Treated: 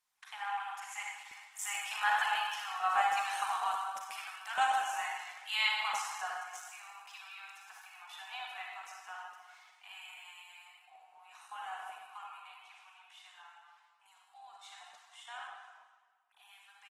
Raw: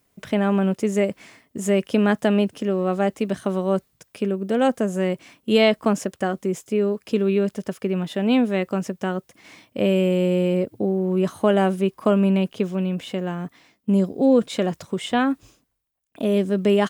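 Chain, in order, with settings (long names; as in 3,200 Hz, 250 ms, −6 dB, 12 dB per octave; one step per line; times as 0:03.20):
source passing by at 0:03.40, 6 m/s, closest 7 metres
Chebyshev high-pass filter 740 Hz, order 10
notch filter 4,800 Hz, Q 12
downsampling to 32,000 Hz
convolution reverb RT60 1.5 s, pre-delay 35 ms, DRR −2 dB
level −1.5 dB
Opus 16 kbit/s 48,000 Hz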